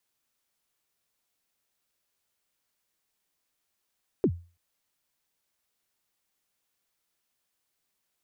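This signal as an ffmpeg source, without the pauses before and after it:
-f lavfi -i "aevalsrc='0.158*pow(10,-3*t/0.34)*sin(2*PI*(450*0.067/log(86/450)*(exp(log(86/450)*min(t,0.067)/0.067)-1)+86*max(t-0.067,0)))':d=0.33:s=44100"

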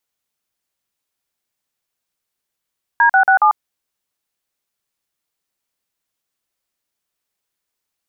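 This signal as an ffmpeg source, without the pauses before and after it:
-f lavfi -i "aevalsrc='0.282*clip(min(mod(t,0.139),0.095-mod(t,0.139))/0.002,0,1)*(eq(floor(t/0.139),0)*(sin(2*PI*941*mod(t,0.139))+sin(2*PI*1633*mod(t,0.139)))+eq(floor(t/0.139),1)*(sin(2*PI*770*mod(t,0.139))+sin(2*PI*1477*mod(t,0.139)))+eq(floor(t/0.139),2)*(sin(2*PI*770*mod(t,0.139))+sin(2*PI*1477*mod(t,0.139)))+eq(floor(t/0.139),3)*(sin(2*PI*852*mod(t,0.139))+sin(2*PI*1209*mod(t,0.139))))':d=0.556:s=44100"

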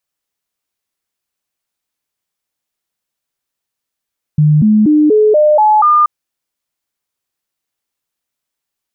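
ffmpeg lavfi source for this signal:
-f lavfi -i "aevalsrc='0.531*clip(min(mod(t,0.24),0.24-mod(t,0.24))/0.005,0,1)*sin(2*PI*151*pow(2,floor(t/0.24)/2)*mod(t,0.24))':d=1.68:s=44100"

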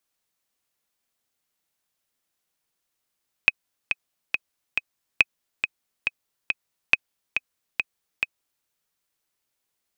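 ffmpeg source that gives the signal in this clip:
-f lavfi -i "aevalsrc='pow(10,(-1.5-7.5*gte(mod(t,4*60/139),60/139))/20)*sin(2*PI*2530*mod(t,60/139))*exp(-6.91*mod(t,60/139)/0.03)':d=5.17:s=44100"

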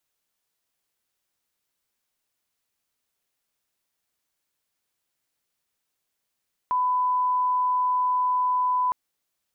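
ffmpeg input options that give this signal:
-f lavfi -i "sine=f=1000:d=2.21:r=44100,volume=-1.94dB"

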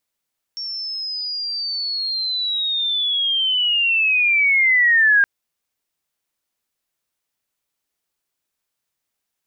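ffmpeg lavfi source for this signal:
-f lavfi -i "aevalsrc='pow(10,(-25.5+15*t/4.67)/20)*sin(2*PI*(5500*t-3900*t*t/(2*4.67)))':d=4.67:s=44100"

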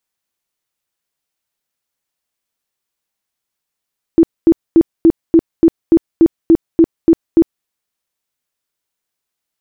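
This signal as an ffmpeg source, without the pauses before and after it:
-f lavfi -i "aevalsrc='0.668*sin(2*PI*330*mod(t,0.29))*lt(mod(t,0.29),17/330)':d=3.48:s=44100"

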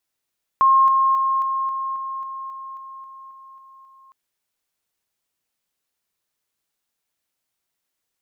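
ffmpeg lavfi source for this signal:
-f lavfi -i "aevalsrc='pow(10,(-11-3*floor(t/0.27))/20)*sin(2*PI*1070*t)':d=3.51:s=44100"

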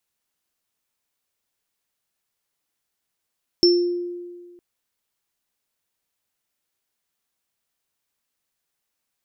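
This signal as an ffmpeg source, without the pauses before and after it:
-f lavfi -i "aevalsrc='0.266*pow(10,-3*t/1.68)*sin(2*PI*351*t)+0.237*pow(10,-3*t/0.42)*sin(2*PI*5380*t)':d=0.96:s=44100"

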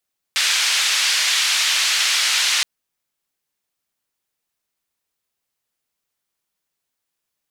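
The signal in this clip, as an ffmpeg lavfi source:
-f lavfi -i "anoisesrc=c=white:d=2.27:r=44100:seed=1,highpass=f=1900,lowpass=f=4900,volume=-5.3dB"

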